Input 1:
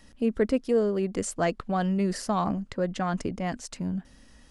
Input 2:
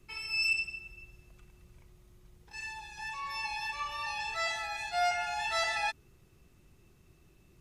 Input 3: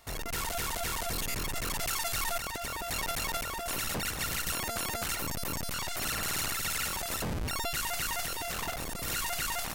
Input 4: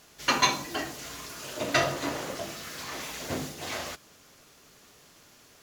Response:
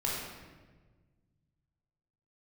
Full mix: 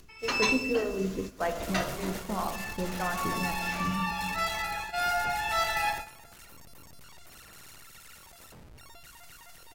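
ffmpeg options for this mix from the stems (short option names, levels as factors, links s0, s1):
-filter_complex "[0:a]lowpass=2400,flanger=delay=2.5:depth=9.9:regen=-85:speed=1.3:shape=triangular,acrossover=split=440[s0][s1];[s0]aeval=exprs='val(0)*(1-1/2+1/2*cos(2*PI*1.8*n/s))':c=same[s2];[s1]aeval=exprs='val(0)*(1-1/2-1/2*cos(2*PI*1.8*n/s))':c=same[s3];[s2][s3]amix=inputs=2:normalize=0,volume=1.12,asplit=2[s4][s5];[s5]volume=0.335[s6];[1:a]highshelf=f=2900:g=-6.5,volume=1,asplit=2[s7][s8];[s8]volume=0.531[s9];[2:a]adelay=1300,volume=0.316,asplit=2[s10][s11];[s11]volume=0.15[s12];[3:a]volume=0.422[s13];[4:a]atrim=start_sample=2205[s14];[s6][s9][s12]amix=inputs=3:normalize=0[s15];[s15][s14]afir=irnorm=-1:irlink=0[s16];[s4][s7][s10][s13][s16]amix=inputs=5:normalize=0,agate=range=0.282:threshold=0.0178:ratio=16:detection=peak,acompressor=mode=upward:threshold=0.00501:ratio=2.5"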